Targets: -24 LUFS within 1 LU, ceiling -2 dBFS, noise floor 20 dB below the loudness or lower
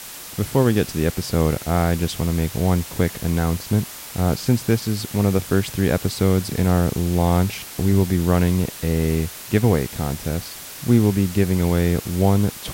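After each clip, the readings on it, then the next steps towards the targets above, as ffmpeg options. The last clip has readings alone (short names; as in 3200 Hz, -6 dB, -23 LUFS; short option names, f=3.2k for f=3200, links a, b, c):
noise floor -37 dBFS; noise floor target -41 dBFS; loudness -21.0 LUFS; peak -3.5 dBFS; loudness target -24.0 LUFS
-> -af "afftdn=nr=6:nf=-37"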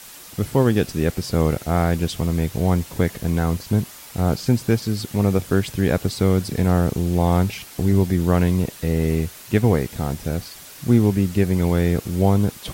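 noise floor -41 dBFS; loudness -21.0 LUFS; peak -3.5 dBFS; loudness target -24.0 LUFS
-> -af "volume=-3dB"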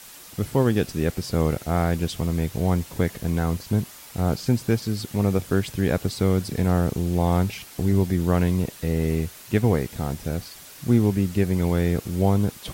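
loudness -24.0 LUFS; peak -6.5 dBFS; noise floor -44 dBFS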